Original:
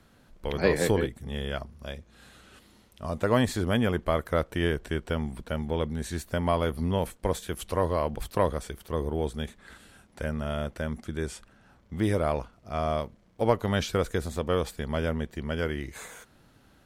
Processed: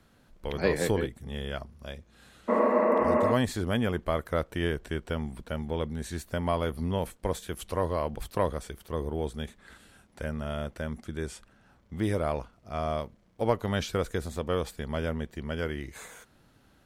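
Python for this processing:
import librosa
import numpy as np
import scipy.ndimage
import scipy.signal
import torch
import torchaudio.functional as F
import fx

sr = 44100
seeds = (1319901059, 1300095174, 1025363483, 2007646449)

y = fx.spec_repair(x, sr, seeds[0], start_s=2.51, length_s=0.78, low_hz=210.0, high_hz=2800.0, source='after')
y = y * librosa.db_to_amplitude(-2.5)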